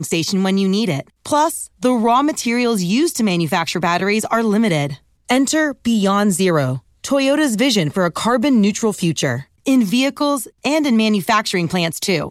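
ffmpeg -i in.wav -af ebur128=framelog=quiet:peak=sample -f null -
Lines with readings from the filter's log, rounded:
Integrated loudness:
  I:         -17.2 LUFS
  Threshold: -27.2 LUFS
Loudness range:
  LRA:         0.9 LU
  Threshold: -37.1 LUFS
  LRA low:   -17.5 LUFS
  LRA high:  -16.6 LUFS
Sample peak:
  Peak:       -4.9 dBFS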